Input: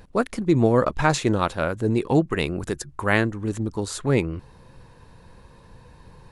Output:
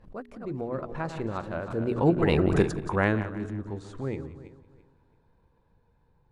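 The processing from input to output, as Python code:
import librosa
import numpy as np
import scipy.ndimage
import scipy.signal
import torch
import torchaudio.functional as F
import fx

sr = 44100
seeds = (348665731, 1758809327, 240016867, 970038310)

y = fx.reverse_delay_fb(x, sr, ms=161, feedback_pct=53, wet_db=-11)
y = fx.doppler_pass(y, sr, speed_mps=15, closest_m=2.9, pass_at_s=2.54)
y = fx.lowpass(y, sr, hz=1300.0, slope=6)
y = fx.hum_notches(y, sr, base_hz=60, count=7)
y = y + 10.0 ** (-17.0 / 20.0) * np.pad(y, (int(178 * sr / 1000.0), 0))[:len(y)]
y = fx.pre_swell(y, sr, db_per_s=130.0)
y = y * librosa.db_to_amplitude(6.5)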